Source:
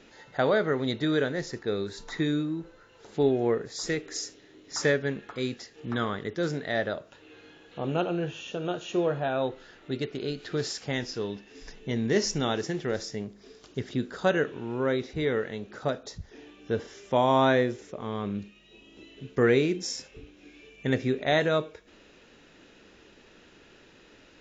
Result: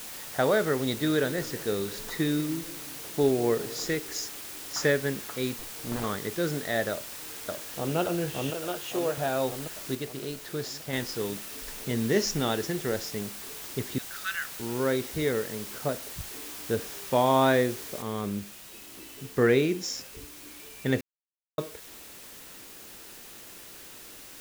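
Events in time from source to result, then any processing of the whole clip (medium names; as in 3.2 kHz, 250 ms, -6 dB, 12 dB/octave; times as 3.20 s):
0.77–3.85 s: modulated delay 190 ms, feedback 60%, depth 152 cents, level -17.5 dB
5.59–6.04 s: sliding maximum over 33 samples
6.91–7.96 s: echo throw 570 ms, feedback 65%, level -1 dB
8.50–9.18 s: high-pass 420 Hz 6 dB/octave
9.95–10.93 s: gain -4 dB
13.98–14.60 s: Chebyshev high-pass 1.2 kHz, order 8
15.32–16.30 s: distance through air 430 m
18.02 s: noise floor step -41 dB -47 dB
21.01–21.58 s: mute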